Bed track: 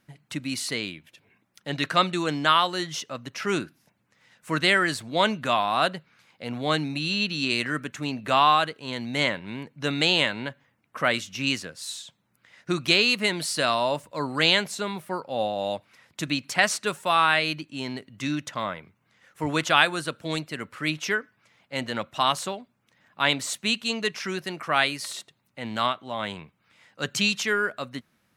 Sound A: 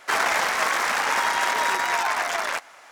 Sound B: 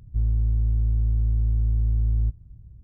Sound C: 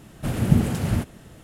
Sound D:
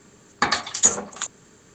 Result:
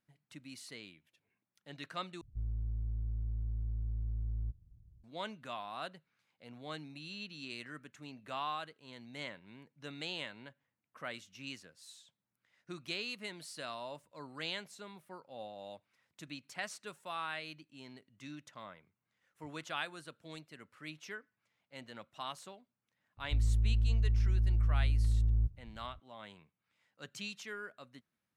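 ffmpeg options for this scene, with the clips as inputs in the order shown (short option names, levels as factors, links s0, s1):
-filter_complex "[2:a]asplit=2[s0][s1];[0:a]volume=0.106,asplit=2[s2][s3];[s2]atrim=end=2.214[s4];[s0]atrim=end=2.83,asetpts=PTS-STARTPTS,volume=0.178[s5];[s3]atrim=start=5.036[s6];[s1]atrim=end=2.83,asetpts=PTS-STARTPTS,volume=0.447,afade=t=in:d=0.004:c=hsin,afade=t=out:st=2.826:d=0.004:c=hsin,adelay=23170[s7];[s4][s5]acrossfade=d=0.004:c1=hsin:c2=hsin[s8];[s8][s6]acrossfade=d=0.004:c1=hsin:c2=hsin[s9];[s9][s7]amix=inputs=2:normalize=0"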